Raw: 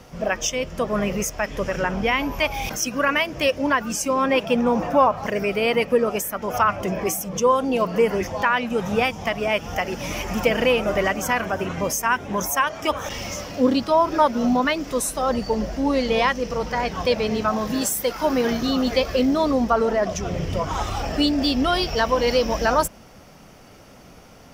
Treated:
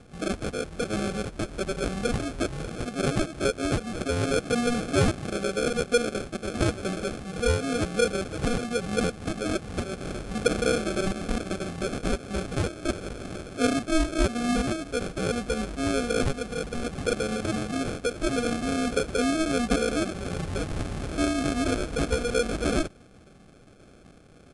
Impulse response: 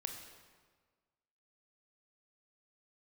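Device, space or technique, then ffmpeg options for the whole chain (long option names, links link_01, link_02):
crushed at another speed: -af "asetrate=88200,aresample=44100,acrusher=samples=23:mix=1:aa=0.000001,asetrate=22050,aresample=44100,volume=-5.5dB"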